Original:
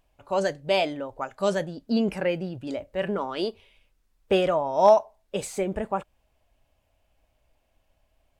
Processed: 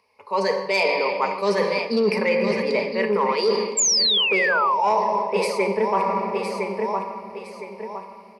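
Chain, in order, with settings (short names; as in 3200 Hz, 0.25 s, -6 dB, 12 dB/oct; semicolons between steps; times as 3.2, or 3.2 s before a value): three-band isolator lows -19 dB, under 330 Hz, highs -14 dB, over 7600 Hz; on a send at -5 dB: reverb RT60 2.7 s, pre-delay 5 ms; on the sum: AGC gain up to 8.5 dB; ripple EQ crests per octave 0.88, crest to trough 17 dB; feedback echo 1.012 s, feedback 34%, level -13 dB; soft clip -6 dBFS, distortion -19 dB; painted sound fall, 3.77–4.88, 750–7600 Hz -14 dBFS; reverse; compressor 6:1, threshold -25 dBFS, peak gain reduction 16 dB; reverse; HPF 75 Hz 24 dB/oct; gain +6.5 dB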